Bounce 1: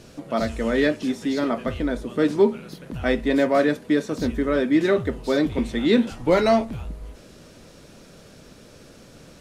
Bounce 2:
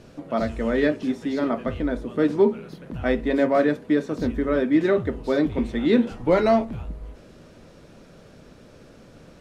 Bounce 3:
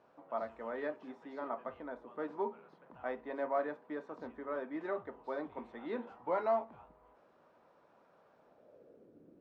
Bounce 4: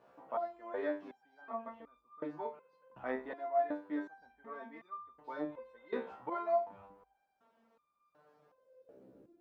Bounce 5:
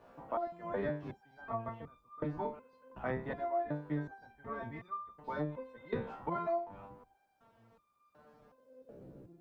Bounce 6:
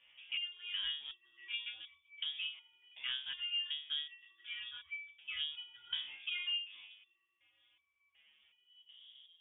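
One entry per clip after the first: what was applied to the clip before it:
high shelf 3400 Hz -11 dB; de-hum 68.25 Hz, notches 7
band-pass sweep 940 Hz -> 320 Hz, 8.36–9.2; gain -6 dB
stepped resonator 2.7 Hz 65–1200 Hz; gain +10 dB
octaver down 1 oct, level +2 dB; compressor 4:1, threshold -37 dBFS, peak gain reduction 9.5 dB; gain +4.5 dB
inverted band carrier 3500 Hz; low-pass opened by the level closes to 2500 Hz, open at -33.5 dBFS; gain -3.5 dB

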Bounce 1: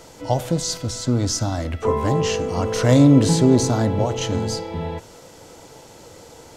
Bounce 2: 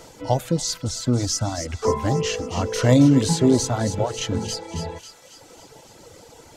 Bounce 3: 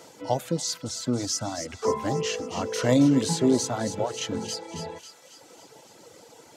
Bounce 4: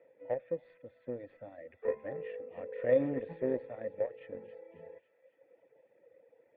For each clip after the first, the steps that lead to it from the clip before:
reverb removal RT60 1.3 s; thin delay 0.273 s, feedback 56%, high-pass 1900 Hz, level -8.5 dB
HPF 170 Hz 12 dB/oct; gain -3.5 dB
added harmonics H 3 -12 dB, 4 -30 dB, 5 -18 dB, 7 -22 dB, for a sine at -8.5 dBFS; vocal tract filter e; gain +5 dB

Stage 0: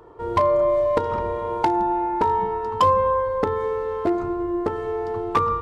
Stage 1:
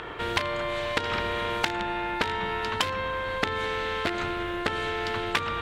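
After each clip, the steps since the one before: band shelf 2300 Hz +15 dB; compressor, threshold -21 dBFS, peak gain reduction 11 dB; spectral compressor 2:1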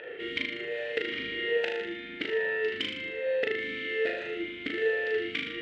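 on a send: flutter echo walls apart 6.6 m, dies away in 0.73 s; on the sum: vowel sweep e-i 1.2 Hz; gain +5.5 dB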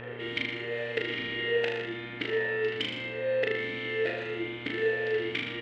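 buzz 120 Hz, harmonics 19, -45 dBFS -5 dB/oct; echo 0.13 s -13 dB

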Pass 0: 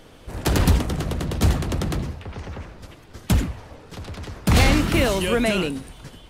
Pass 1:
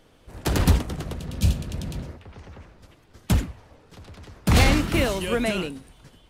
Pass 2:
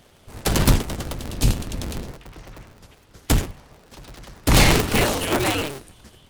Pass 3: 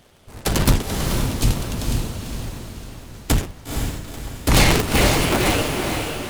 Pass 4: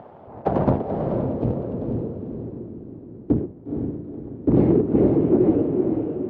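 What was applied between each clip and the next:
spectral repair 1.21–2.14, 220–2300 Hz before; upward expander 1.5:1, over -31 dBFS
cycle switcher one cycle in 2, inverted; high shelf 4100 Hz +6.5 dB; gain +2 dB
diffused feedback echo 0.483 s, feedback 46%, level -4 dB
upward compressor, threshold -35 dBFS; BPF 130–5400 Hz; low-pass sweep 840 Hz -> 360 Hz, 0.05–2.85

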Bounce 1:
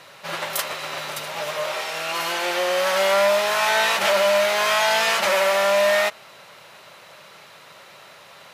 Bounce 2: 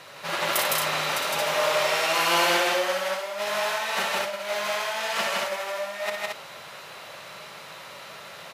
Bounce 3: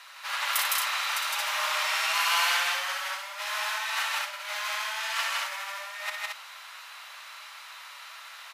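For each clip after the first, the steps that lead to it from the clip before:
negative-ratio compressor -24 dBFS, ratio -0.5; on a send: loudspeakers at several distances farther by 20 m -6 dB, 55 m -1 dB, 77 m -3 dB; on the sum: gain -4.5 dB
inverse Chebyshev high-pass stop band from 160 Hz, stop band 80 dB; gain -1.5 dB

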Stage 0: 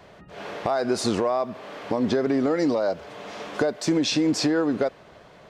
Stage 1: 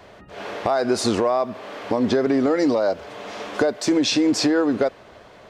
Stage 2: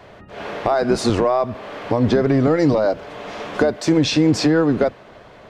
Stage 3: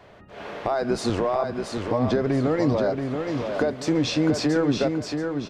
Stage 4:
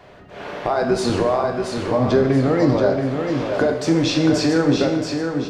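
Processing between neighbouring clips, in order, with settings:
bell 160 Hz -14.5 dB 0.2 oct; gain +3.5 dB
octaver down 1 oct, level -4 dB; tone controls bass 0 dB, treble -5 dB; gain +2.5 dB
feedback echo 0.679 s, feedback 33%, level -5.5 dB; gain -6.5 dB
plate-style reverb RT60 0.88 s, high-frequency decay 0.95×, DRR 3.5 dB; gain +3.5 dB

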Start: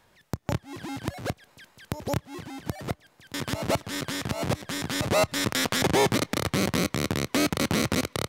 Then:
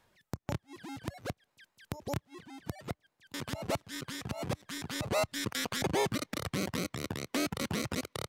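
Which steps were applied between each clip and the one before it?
reverb removal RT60 1.6 s; gain -7 dB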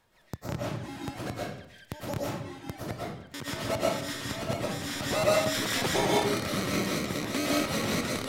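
reverb RT60 0.75 s, pre-delay 80 ms, DRR -5.5 dB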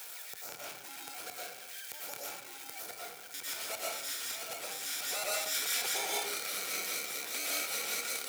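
zero-crossing step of -36.5 dBFS; differentiator; small resonant body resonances 470/740/1400/2300 Hz, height 12 dB, ringing for 25 ms

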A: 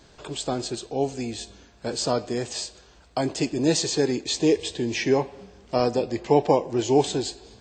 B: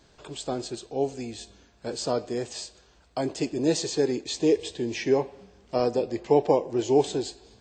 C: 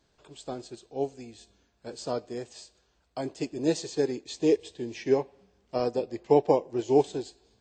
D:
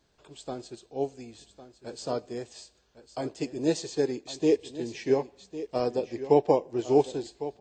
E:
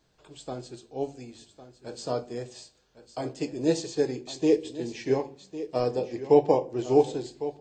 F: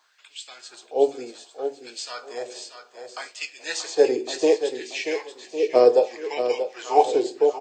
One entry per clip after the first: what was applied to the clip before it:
dynamic EQ 440 Hz, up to +5 dB, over -31 dBFS, Q 1.1; gain -5.5 dB
upward expander 1.5:1, over -38 dBFS
echo 1.104 s -13.5 dB
shoebox room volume 160 m³, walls furnished, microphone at 0.54 m
LFO high-pass sine 0.65 Hz 390–2500 Hz; feedback echo 0.633 s, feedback 16%, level -9 dB; gain +6.5 dB

